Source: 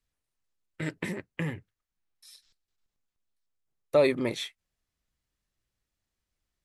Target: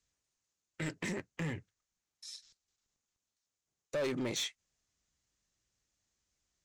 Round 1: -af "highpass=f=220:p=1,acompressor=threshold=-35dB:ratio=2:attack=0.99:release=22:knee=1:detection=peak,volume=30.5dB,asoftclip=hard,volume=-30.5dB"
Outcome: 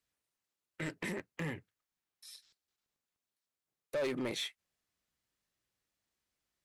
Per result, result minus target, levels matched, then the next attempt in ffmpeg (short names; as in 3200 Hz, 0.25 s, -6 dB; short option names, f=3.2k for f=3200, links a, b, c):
8000 Hz band -6.0 dB; 125 Hz band -2.5 dB
-af "highpass=f=220:p=1,acompressor=threshold=-35dB:ratio=2:attack=0.99:release=22:knee=1:detection=peak,lowpass=f=6.7k:t=q:w=3.5,volume=30.5dB,asoftclip=hard,volume=-30.5dB"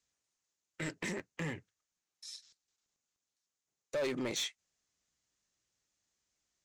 125 Hz band -3.0 dB
-af "highpass=f=56:p=1,acompressor=threshold=-35dB:ratio=2:attack=0.99:release=22:knee=1:detection=peak,lowpass=f=6.7k:t=q:w=3.5,volume=30.5dB,asoftclip=hard,volume=-30.5dB"